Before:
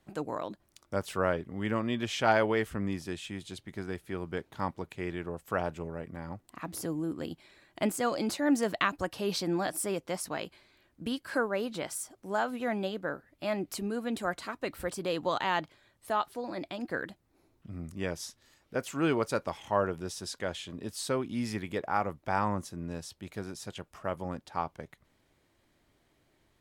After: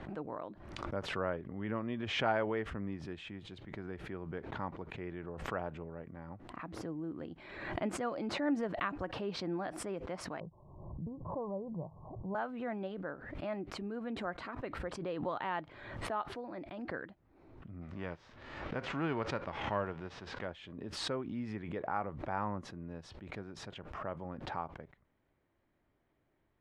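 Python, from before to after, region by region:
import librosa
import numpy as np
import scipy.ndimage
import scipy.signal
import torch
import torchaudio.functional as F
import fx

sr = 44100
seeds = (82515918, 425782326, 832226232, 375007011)

y = fx.chain(x, sr, fx.cheby1_lowpass(hz=1100.0, order=8),
    fx.low_shelf_res(hz=200.0, db=7.0, q=3.0), at=(10.4, 12.35))
y = fx.envelope_flatten(y, sr, power=0.6, at=(17.81, 20.45), fade=0.02)
y = fx.air_absorb(y, sr, metres=99.0, at=(17.81, 20.45), fade=0.02)
y = scipy.signal.sosfilt(scipy.signal.butter(2, 2000.0, 'lowpass', fs=sr, output='sos'), y)
y = fx.pre_swell(y, sr, db_per_s=50.0)
y = F.gain(torch.from_numpy(y), -7.0).numpy()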